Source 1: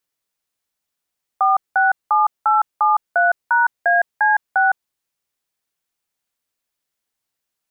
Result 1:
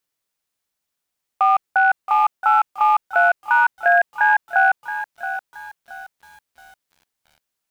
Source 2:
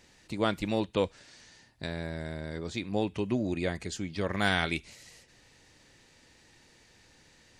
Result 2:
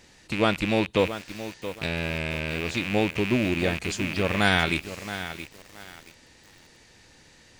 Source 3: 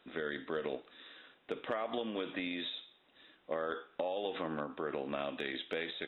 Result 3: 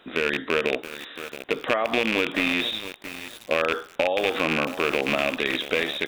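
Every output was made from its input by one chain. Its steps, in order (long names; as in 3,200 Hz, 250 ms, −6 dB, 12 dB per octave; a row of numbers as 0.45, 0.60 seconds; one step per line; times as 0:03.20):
loose part that buzzes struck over −45 dBFS, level −24 dBFS
feedback echo at a low word length 674 ms, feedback 35%, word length 7 bits, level −11 dB
normalise the peak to −6 dBFS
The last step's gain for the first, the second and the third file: 0.0, +5.5, +12.5 decibels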